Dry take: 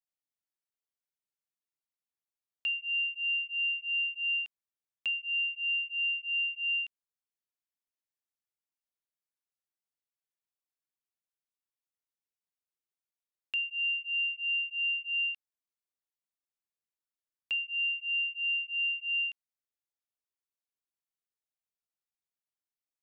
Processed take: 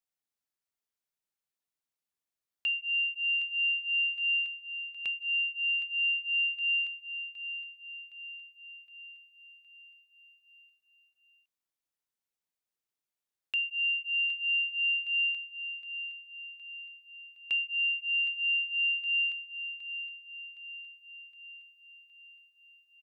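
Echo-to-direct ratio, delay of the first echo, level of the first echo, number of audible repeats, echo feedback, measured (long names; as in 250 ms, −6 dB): −10.0 dB, 765 ms, −11.5 dB, 5, 55%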